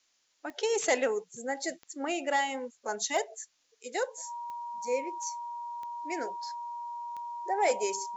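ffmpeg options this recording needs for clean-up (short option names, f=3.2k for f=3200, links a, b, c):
-af "adeclick=t=4,bandreject=f=950:w=30,agate=range=-21dB:threshold=-62dB"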